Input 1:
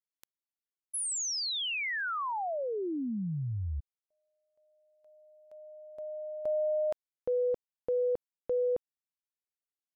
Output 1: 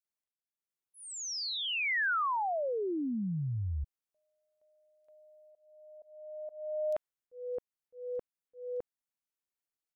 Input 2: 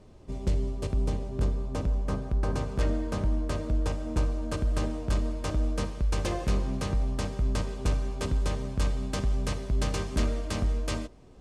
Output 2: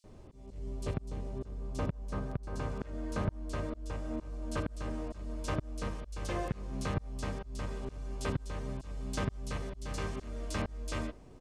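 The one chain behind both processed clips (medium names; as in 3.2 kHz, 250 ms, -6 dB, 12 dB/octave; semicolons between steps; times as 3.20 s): slow attack 546 ms; dynamic bell 1.6 kHz, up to +4 dB, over -52 dBFS, Q 0.85; bands offset in time highs, lows 40 ms, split 3.8 kHz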